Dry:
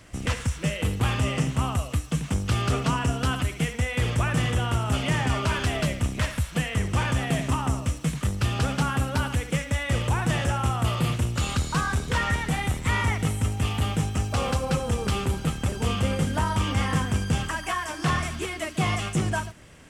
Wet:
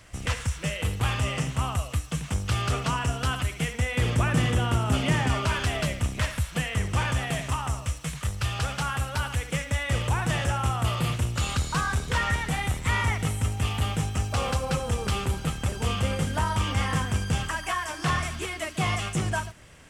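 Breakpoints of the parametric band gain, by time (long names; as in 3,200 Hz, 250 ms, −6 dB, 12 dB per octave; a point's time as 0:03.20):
parametric band 260 Hz 1.6 octaves
0:03.48 −7.5 dB
0:04.13 +2.5 dB
0:05.11 +2.5 dB
0:05.55 −5 dB
0:07.04 −5 dB
0:07.64 −14 dB
0:09.20 −14 dB
0:09.62 −5 dB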